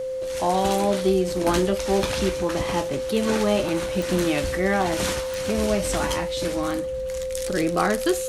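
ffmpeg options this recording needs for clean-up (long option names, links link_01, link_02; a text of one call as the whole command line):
ffmpeg -i in.wav -af "adeclick=threshold=4,bandreject=frequency=520:width=30" out.wav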